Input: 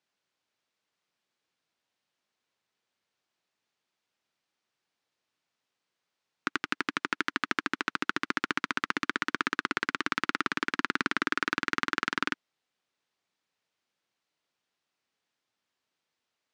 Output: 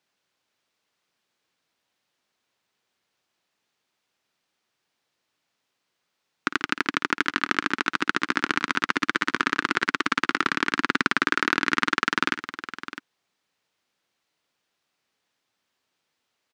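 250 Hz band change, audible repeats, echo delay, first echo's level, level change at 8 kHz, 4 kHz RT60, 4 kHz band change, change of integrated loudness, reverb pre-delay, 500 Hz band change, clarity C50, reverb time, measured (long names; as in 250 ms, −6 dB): +6.5 dB, 2, 54 ms, −14.5 dB, +6.5 dB, no reverb audible, +6.5 dB, +6.5 dB, no reverb audible, +6.5 dB, no reverb audible, no reverb audible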